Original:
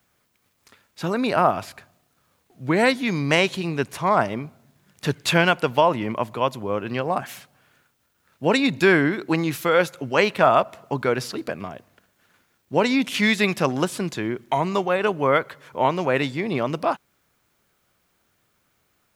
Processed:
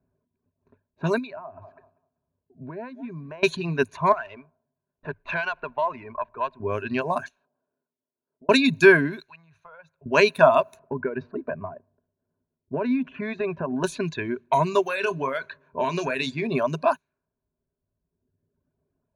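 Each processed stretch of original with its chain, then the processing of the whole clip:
1.18–3.43 HPF 52 Hz + thinning echo 0.194 s, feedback 29%, high-pass 460 Hz, level -15.5 dB + compressor 5:1, threshold -33 dBFS
4.12–6.6 three-band isolator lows -15 dB, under 540 Hz, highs -21 dB, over 3400 Hz + compressor 3:1, threshold -24 dBFS + running maximum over 3 samples
7.28–8.49 HPF 310 Hz + bell 2100 Hz -11.5 dB 0.62 oct + compressor 16:1, threshold -48 dBFS
9.19–10.06 HPF 58 Hz 24 dB/oct + compressor 5:1, threshold -23 dBFS + passive tone stack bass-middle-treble 10-0-10
10.79–13.84 LPF 1500 Hz + bell 540 Hz +2 dB 1.2 oct + compressor, threshold -22 dBFS
14.86–16.47 high shelf 3100 Hz +11 dB + compressor 10:1, threshold -20 dBFS + doubler 30 ms -10 dB
whole clip: low-pass opened by the level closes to 480 Hz, open at -19.5 dBFS; reverb removal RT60 1.5 s; ripple EQ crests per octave 1.5, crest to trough 12 dB; gain -1 dB

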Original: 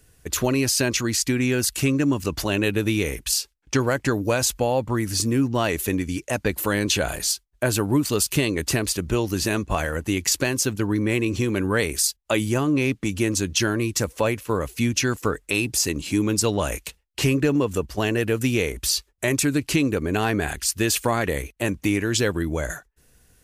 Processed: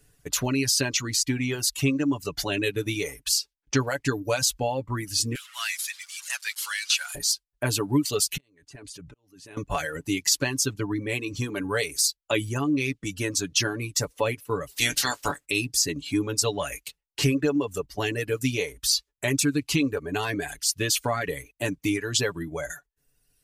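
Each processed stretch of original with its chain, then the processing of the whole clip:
5.35–7.15 delta modulation 64 kbps, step -29 dBFS + HPF 1300 Hz 24 dB/oct + tilt +1.5 dB/oct
8.37–9.57 LPF 11000 Hz 24 dB/oct + level quantiser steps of 19 dB + auto swell 0.498 s
14.7–15.44 spectral limiter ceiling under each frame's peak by 26 dB + doubler 20 ms -11.5 dB
whole clip: reverb removal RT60 1.4 s; comb 7 ms, depth 63%; dynamic EQ 4600 Hz, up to +5 dB, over -38 dBFS, Q 0.95; gain -5 dB

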